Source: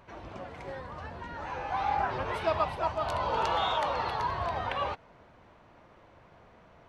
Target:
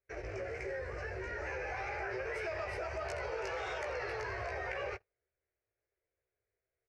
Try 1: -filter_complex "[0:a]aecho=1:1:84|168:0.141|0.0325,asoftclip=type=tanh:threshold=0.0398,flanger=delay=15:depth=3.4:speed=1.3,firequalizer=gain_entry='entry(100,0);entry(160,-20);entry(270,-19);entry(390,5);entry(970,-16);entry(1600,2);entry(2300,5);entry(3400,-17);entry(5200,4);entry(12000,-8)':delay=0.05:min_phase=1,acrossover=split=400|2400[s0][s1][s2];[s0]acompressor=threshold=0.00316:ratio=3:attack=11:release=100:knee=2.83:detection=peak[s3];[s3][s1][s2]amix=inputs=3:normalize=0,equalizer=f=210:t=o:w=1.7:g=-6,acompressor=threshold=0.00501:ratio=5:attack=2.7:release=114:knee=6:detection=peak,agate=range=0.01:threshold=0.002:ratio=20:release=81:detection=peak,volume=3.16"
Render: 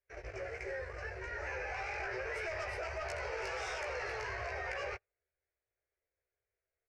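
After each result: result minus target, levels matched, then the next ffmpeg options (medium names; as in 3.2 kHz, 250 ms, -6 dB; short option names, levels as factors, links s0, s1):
saturation: distortion +11 dB; 250 Hz band -4.0 dB
-filter_complex "[0:a]aecho=1:1:84|168:0.141|0.0325,asoftclip=type=tanh:threshold=0.112,flanger=delay=15:depth=3.4:speed=1.3,firequalizer=gain_entry='entry(100,0);entry(160,-20);entry(270,-19);entry(390,5);entry(970,-16);entry(1600,2);entry(2300,5);entry(3400,-17);entry(5200,4);entry(12000,-8)':delay=0.05:min_phase=1,acrossover=split=400|2400[s0][s1][s2];[s0]acompressor=threshold=0.00316:ratio=3:attack=11:release=100:knee=2.83:detection=peak[s3];[s3][s1][s2]amix=inputs=3:normalize=0,equalizer=f=210:t=o:w=1.7:g=-6,acompressor=threshold=0.00501:ratio=5:attack=2.7:release=114:knee=6:detection=peak,agate=range=0.01:threshold=0.002:ratio=20:release=81:detection=peak,volume=3.16"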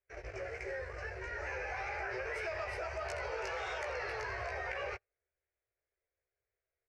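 250 Hz band -4.5 dB
-filter_complex "[0:a]aecho=1:1:84|168:0.141|0.0325,asoftclip=type=tanh:threshold=0.112,flanger=delay=15:depth=3.4:speed=1.3,firequalizer=gain_entry='entry(100,0);entry(160,-20);entry(270,-19);entry(390,5);entry(970,-16);entry(1600,2);entry(2300,5);entry(3400,-17);entry(5200,4);entry(12000,-8)':delay=0.05:min_phase=1,acrossover=split=400|2400[s0][s1][s2];[s0]acompressor=threshold=0.00316:ratio=3:attack=11:release=100:knee=2.83:detection=peak[s3];[s3][s1][s2]amix=inputs=3:normalize=0,equalizer=f=210:t=o:w=1.7:g=4.5,acompressor=threshold=0.00501:ratio=5:attack=2.7:release=114:knee=6:detection=peak,agate=range=0.01:threshold=0.002:ratio=20:release=81:detection=peak,volume=3.16"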